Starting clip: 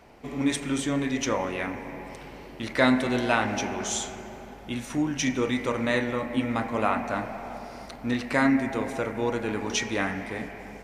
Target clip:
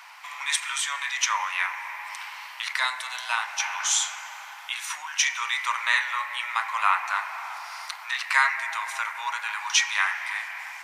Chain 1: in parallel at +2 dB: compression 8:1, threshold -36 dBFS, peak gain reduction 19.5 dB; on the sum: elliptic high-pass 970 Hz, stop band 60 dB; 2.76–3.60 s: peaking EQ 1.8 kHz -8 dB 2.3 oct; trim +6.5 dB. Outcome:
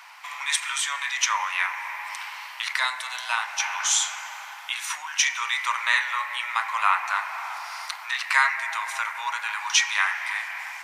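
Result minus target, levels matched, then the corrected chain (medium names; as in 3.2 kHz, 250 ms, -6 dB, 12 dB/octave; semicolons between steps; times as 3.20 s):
compression: peak gain reduction -6 dB
in parallel at +2 dB: compression 8:1, threshold -43 dBFS, peak gain reduction 25.5 dB; on the sum: elliptic high-pass 970 Hz, stop band 60 dB; 2.76–3.60 s: peaking EQ 1.8 kHz -8 dB 2.3 oct; trim +6.5 dB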